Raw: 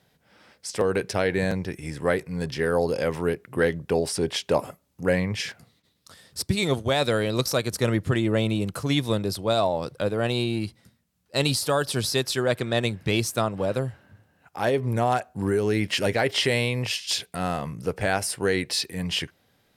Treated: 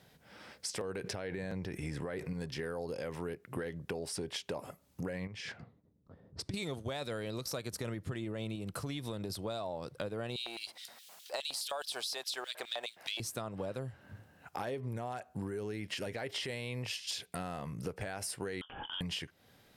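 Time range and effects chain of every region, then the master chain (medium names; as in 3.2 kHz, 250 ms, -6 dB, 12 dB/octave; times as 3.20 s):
1.04–2.33 s: treble shelf 4.9 kHz -6.5 dB + level flattener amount 50%
5.27–6.54 s: level-controlled noise filter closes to 330 Hz, open at -28 dBFS + compression 4:1, threshold -35 dBFS + distance through air 54 m
8.55–9.30 s: band-stop 6.6 kHz, Q 19 + compression 4:1, threshold -25 dBFS
10.36–13.20 s: companding laws mixed up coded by mu + upward compressor, threshold -42 dBFS + LFO high-pass square 4.8 Hz 720–3400 Hz
18.61–19.01 s: frequency inversion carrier 3.4 kHz + compression 2.5:1, threshold -37 dBFS + doubling 25 ms -11 dB
whole clip: peak limiter -15.5 dBFS; compression 6:1, threshold -39 dBFS; trim +2 dB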